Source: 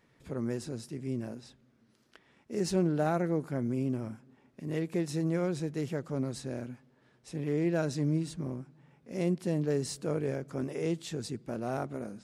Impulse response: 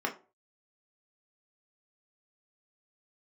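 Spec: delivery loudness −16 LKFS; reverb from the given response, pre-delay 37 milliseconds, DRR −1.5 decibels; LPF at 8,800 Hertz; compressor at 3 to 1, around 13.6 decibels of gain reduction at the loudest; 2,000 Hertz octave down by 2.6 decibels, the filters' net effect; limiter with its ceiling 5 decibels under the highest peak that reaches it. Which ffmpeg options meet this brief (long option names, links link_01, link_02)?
-filter_complex "[0:a]lowpass=8800,equalizer=frequency=2000:width_type=o:gain=-3.5,acompressor=threshold=-44dB:ratio=3,alimiter=level_in=12.5dB:limit=-24dB:level=0:latency=1,volume=-12.5dB,asplit=2[link_01][link_02];[1:a]atrim=start_sample=2205,adelay=37[link_03];[link_02][link_03]afir=irnorm=-1:irlink=0,volume=-5.5dB[link_04];[link_01][link_04]amix=inputs=2:normalize=0,volume=27dB"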